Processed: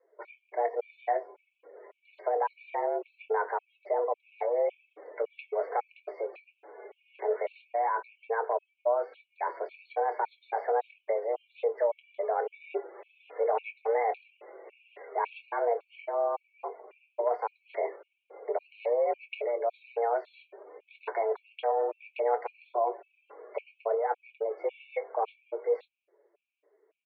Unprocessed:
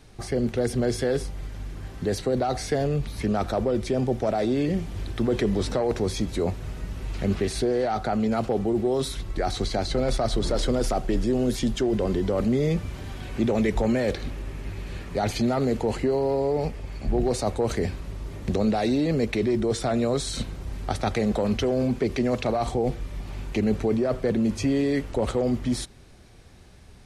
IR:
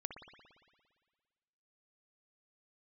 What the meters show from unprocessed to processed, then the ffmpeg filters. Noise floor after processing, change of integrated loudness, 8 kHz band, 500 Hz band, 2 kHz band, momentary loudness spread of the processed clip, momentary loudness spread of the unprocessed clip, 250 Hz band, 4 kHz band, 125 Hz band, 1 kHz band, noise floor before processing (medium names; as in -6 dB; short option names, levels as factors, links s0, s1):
-78 dBFS, -6.5 dB, under -40 dB, -4.5 dB, -5.5 dB, 16 LU, 11 LU, under -25 dB, under -20 dB, under -40 dB, +1.0 dB, -46 dBFS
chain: -filter_complex "[0:a]afftdn=nr=16:nf=-45,flanger=delay=3.6:depth=3.1:regen=-32:speed=1.2:shape=sinusoidal,asplit=2[s0][s1];[s1]adelay=24,volume=0.251[s2];[s0][s2]amix=inputs=2:normalize=0,highpass=f=180:t=q:w=0.5412,highpass=f=180:t=q:w=1.307,lowpass=f=2400:t=q:w=0.5176,lowpass=f=2400:t=q:w=0.7071,lowpass=f=2400:t=q:w=1.932,afreqshift=230,afftfilt=real='re*gt(sin(2*PI*1.8*pts/sr)*(1-2*mod(floor(b*sr/1024/2200),2)),0)':imag='im*gt(sin(2*PI*1.8*pts/sr)*(1-2*mod(floor(b*sr/1024/2200),2)),0)':win_size=1024:overlap=0.75"